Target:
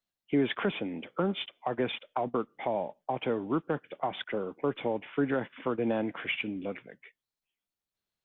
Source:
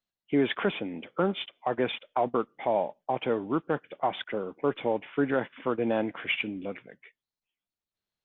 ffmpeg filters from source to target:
-filter_complex "[0:a]acrossover=split=290[s0][s1];[s1]acompressor=threshold=0.0355:ratio=3[s2];[s0][s2]amix=inputs=2:normalize=0"

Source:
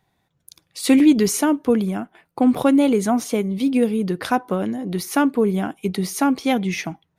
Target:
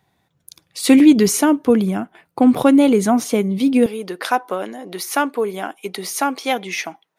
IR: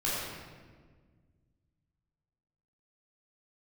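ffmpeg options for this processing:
-af "asetnsamples=n=441:p=0,asendcmd='3.86 highpass f 490',highpass=59,volume=1.5"

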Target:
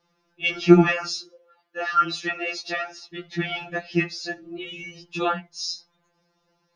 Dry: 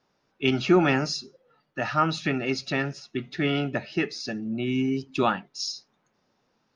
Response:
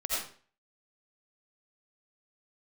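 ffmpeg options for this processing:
-filter_complex "[0:a]asettb=1/sr,asplit=3[s0][s1][s2];[s0]atrim=end=0.894[s3];[s1]atrim=start=0.89:end=3.1,asetpts=PTS-STARTPTS,afade=t=in:d=0.004:c=qsin,afade=t=out:st=2.206:d=0.004:c=qsin,highpass=f=270:w=0.5412,highpass=f=270:w=1.3066[s4];[s2]atrim=start=3.096[s5];[s3][s4]acrossfade=d=0.004:c1=hsin:c2=qsin[s6];[s6][s5]acrossfade=d=0.004:c1=qsin:c2=hsin,afftfilt=real='re*2.83*eq(mod(b,8),0)':imag='im*2.83*eq(mod(b,8),0)':win_size=2048:overlap=0.75,volume=1.58"

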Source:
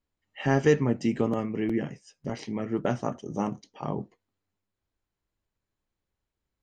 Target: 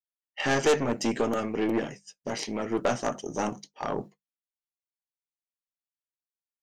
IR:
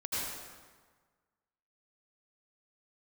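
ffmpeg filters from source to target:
-af "bandreject=f=50:t=h:w=6,bandreject=f=100:t=h:w=6,bandreject=f=150:t=h:w=6,bandreject=f=200:t=h:w=6,aeval=exprs='(tanh(15.8*val(0)+0.5)-tanh(0.5))/15.8':c=same,bass=f=250:g=-11,treble=f=4000:g=7,agate=range=0.0224:threshold=0.00631:ratio=3:detection=peak,volume=2.51"

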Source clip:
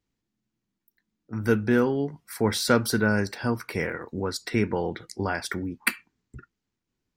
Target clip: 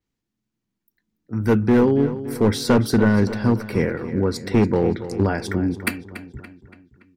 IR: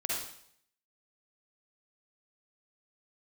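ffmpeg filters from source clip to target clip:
-filter_complex "[0:a]acrossover=split=520[s0][s1];[s0]dynaudnorm=f=290:g=9:m=3.98[s2];[s2][s1]amix=inputs=2:normalize=0,volume=3.35,asoftclip=hard,volume=0.299,asplit=2[s3][s4];[s4]adelay=285,lowpass=f=4400:p=1,volume=0.237,asplit=2[s5][s6];[s6]adelay=285,lowpass=f=4400:p=1,volume=0.52,asplit=2[s7][s8];[s8]adelay=285,lowpass=f=4400:p=1,volume=0.52,asplit=2[s9][s10];[s10]adelay=285,lowpass=f=4400:p=1,volume=0.52,asplit=2[s11][s12];[s12]adelay=285,lowpass=f=4400:p=1,volume=0.52[s13];[s3][s5][s7][s9][s11][s13]amix=inputs=6:normalize=0,adynamicequalizer=threshold=0.00708:dfrequency=6500:dqfactor=0.7:tfrequency=6500:tqfactor=0.7:attack=5:release=100:ratio=0.375:range=2.5:mode=cutabove:tftype=highshelf"

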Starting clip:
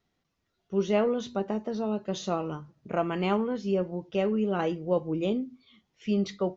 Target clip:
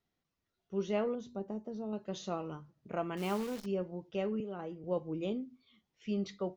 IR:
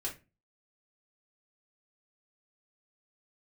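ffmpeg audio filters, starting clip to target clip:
-filter_complex "[0:a]asettb=1/sr,asplit=3[s0][s1][s2];[s0]atrim=end=1.154[s3];[s1]atrim=start=1.15:end=1.93,asetpts=PTS-STARTPTS,afade=t=in:d=0.004:c=qsin,afade=t=out:st=0.776:d=0.004:c=qsin,equalizer=f=2300:w=0.47:g=-12.5[s4];[s2]atrim=start=1.926[s5];[s3][s4]acrossfade=d=0.004:c1=hsin:c2=qsin[s6];[s6][s5]acrossfade=d=0.004:c1=qsin:c2=hsin,asettb=1/sr,asplit=3[s7][s8][s9];[s7]atrim=end=3.174[s10];[s8]atrim=start=3.17:end=3.66,asetpts=PTS-STARTPTS,afade=t=in:d=0.004:c=qsin,afade=t=out:st=0.486:d=0.004:c=qsin,acrusher=bits=7:dc=4:mix=0:aa=0.000001[s11];[s9]atrim=start=3.656[s12];[s10][s11]acrossfade=d=0.004:c1=hsin:c2=qsin[s13];[s13][s12]acrossfade=d=0.004:c1=qsin:c2=hsin,asettb=1/sr,asplit=3[s14][s15][s16];[s14]atrim=end=4.404[s17];[s15]atrim=start=4.4:end=4.84,asetpts=PTS-STARTPTS,afade=t=in:d=0.004:c=qsin,afade=t=out:st=0.436:d=0.004:c=qsin,acrossover=split=290|1500[s18][s19][s20];[s18]acompressor=threshold=0.0112:ratio=4[s21];[s19]acompressor=threshold=0.0224:ratio=4[s22];[s20]acompressor=threshold=0.00158:ratio=4[s23];[s21][s22][s23]amix=inputs=3:normalize=0[s24];[s16]atrim=start=4.836[s25];[s17][s24]acrossfade=d=0.004:c1=hsin:c2=qsin[s26];[s26][s25]acrossfade=d=0.004:c1=qsin:c2=hsin,volume=0.398"

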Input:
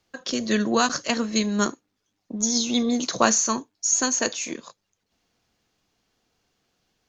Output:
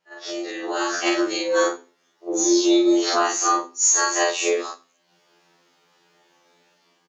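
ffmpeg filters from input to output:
-filter_complex "[0:a]afftfilt=real='re':imag='-im':win_size=4096:overlap=0.75,highshelf=f=4200:g=-11.5,acompressor=threshold=0.0178:ratio=12,bandreject=f=50:t=h:w=6,bandreject=f=100:t=h:w=6,bandreject=f=150:t=h:w=6,bandreject=f=200:t=h:w=6,bandreject=f=250:t=h:w=6,bandreject=f=300:t=h:w=6,afreqshift=110,asplit=2[s0][s1];[s1]aecho=0:1:97|194:0.0708|0.012[s2];[s0][s2]amix=inputs=2:normalize=0,dynaudnorm=f=280:g=5:m=5.31,lowshelf=f=310:g=-9.5,afftfilt=real='re*2*eq(mod(b,4),0)':imag='im*2*eq(mod(b,4),0)':win_size=2048:overlap=0.75,volume=2.37"

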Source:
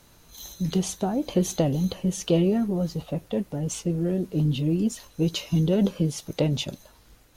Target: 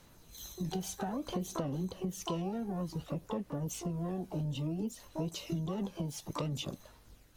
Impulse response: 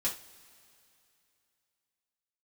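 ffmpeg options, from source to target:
-filter_complex "[0:a]asplit=2[s0][s1];[s1]asetrate=88200,aresample=44100,atempo=0.5,volume=0.355[s2];[s0][s2]amix=inputs=2:normalize=0,aphaser=in_gain=1:out_gain=1:delay=1.3:decay=0.32:speed=0.58:type=sinusoidal,acompressor=threshold=0.0501:ratio=6,volume=0.447"

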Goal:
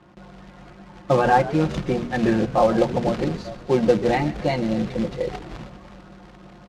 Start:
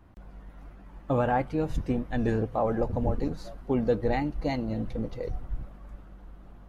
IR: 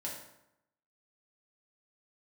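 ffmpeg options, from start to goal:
-filter_complex "[0:a]acontrast=78,bandreject=f=60:t=h:w=6,bandreject=f=120:t=h:w=6,bandreject=f=180:t=h:w=6,bandreject=f=240:t=h:w=6,aecho=1:1:5.6:0.79,acrusher=bits=4:mode=log:mix=0:aa=0.000001,highpass=110,lowpass=4800,asplit=2[s0][s1];[s1]asplit=6[s2][s3][s4][s5][s6][s7];[s2]adelay=129,afreqshift=-88,volume=0.158[s8];[s3]adelay=258,afreqshift=-176,volume=0.0977[s9];[s4]adelay=387,afreqshift=-264,volume=0.061[s10];[s5]adelay=516,afreqshift=-352,volume=0.0376[s11];[s6]adelay=645,afreqshift=-440,volume=0.0234[s12];[s7]adelay=774,afreqshift=-528,volume=0.0145[s13];[s8][s9][s10][s11][s12][s13]amix=inputs=6:normalize=0[s14];[s0][s14]amix=inputs=2:normalize=0"

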